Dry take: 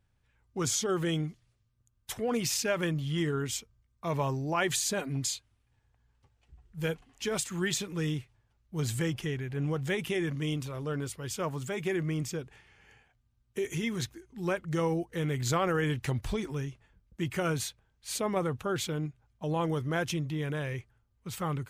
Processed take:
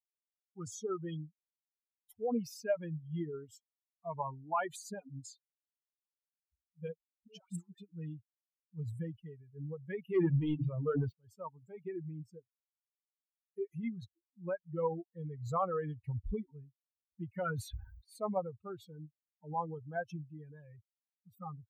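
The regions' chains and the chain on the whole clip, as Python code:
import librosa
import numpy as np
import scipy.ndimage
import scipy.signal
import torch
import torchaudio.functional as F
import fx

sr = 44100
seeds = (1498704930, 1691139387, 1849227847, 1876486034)

y = fx.chain(x, sr, fx.over_compress(threshold_db=-34.0, ratio=-0.5),
    fx.dispersion(late='highs', ms=126.0, hz=770.0), at=(7.08, 7.78))
y = fx.chain(y, sr, fx.cheby1_bandpass(low_hz=110.0, high_hz=3400.0, order=2),
    fx.hum_notches(base_hz=50, count=9),
    fx.leveller(passes=3), at=(10.14, 11.13))
y = fx.chain(y, sr, fx.peak_eq(hz=1800.0, db=6.5, octaves=0.63),
    fx.sustainer(db_per_s=26.0), at=(17.36, 18.27))
y = fx.bin_expand(y, sr, power=3.0)
y = fx.high_shelf_res(y, sr, hz=1600.0, db=-12.0, q=1.5)
y = y * librosa.db_to_amplitude(1.0)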